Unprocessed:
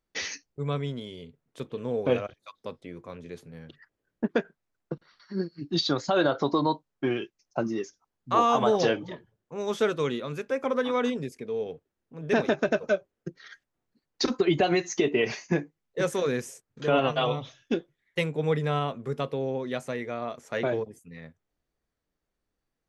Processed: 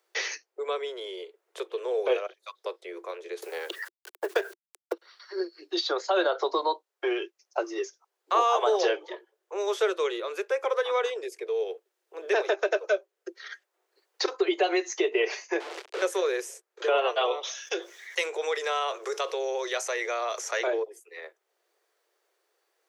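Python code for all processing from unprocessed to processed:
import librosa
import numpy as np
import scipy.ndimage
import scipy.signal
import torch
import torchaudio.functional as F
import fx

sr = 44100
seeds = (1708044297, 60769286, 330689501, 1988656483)

y = fx.chain(x, sr, fx.law_mismatch(coded='A'),
    fx.high_shelf(hz=4300.0, db=6.5),
    fx.env_flatten(amount_pct=50), at=(3.42, 4.93))
y = fx.chain(y, sr, fx.clip_1bit(),
    fx.lowpass(hz=4800.0, slope=12), at=(15.6, 16.02))
y = fx.chain(y, sr, fx.highpass(hz=1000.0, slope=6),
    fx.peak_eq(hz=6000.0, db=13.0, octaves=0.6),
    fx.env_flatten(amount_pct=50), at=(17.43, 20.67))
y = scipy.signal.sosfilt(scipy.signal.butter(16, 350.0, 'highpass', fs=sr, output='sos'), y)
y = fx.band_squash(y, sr, depth_pct=40)
y = F.gain(torch.from_numpy(y), 1.0).numpy()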